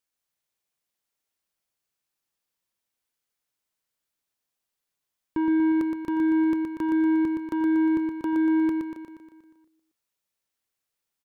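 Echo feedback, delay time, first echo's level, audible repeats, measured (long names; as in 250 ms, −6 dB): 58%, 119 ms, −4.5 dB, 7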